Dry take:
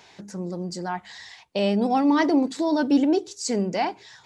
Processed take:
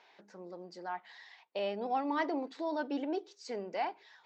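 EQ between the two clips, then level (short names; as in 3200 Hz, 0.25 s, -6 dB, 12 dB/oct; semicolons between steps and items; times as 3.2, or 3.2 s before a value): HPF 470 Hz 12 dB/oct; air absorption 220 m; -7.5 dB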